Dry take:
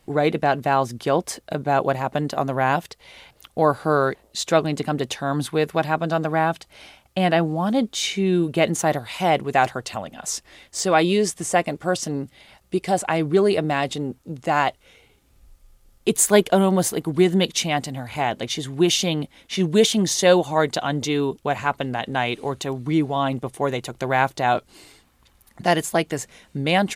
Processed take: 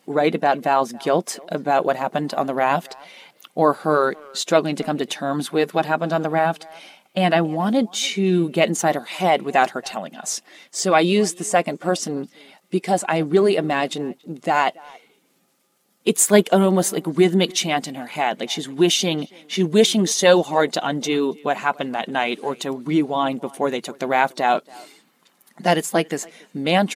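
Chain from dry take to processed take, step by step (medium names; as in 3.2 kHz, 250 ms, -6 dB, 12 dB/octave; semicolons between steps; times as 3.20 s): coarse spectral quantiser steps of 15 dB; brick-wall FIR high-pass 150 Hz; speakerphone echo 280 ms, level -23 dB; trim +2 dB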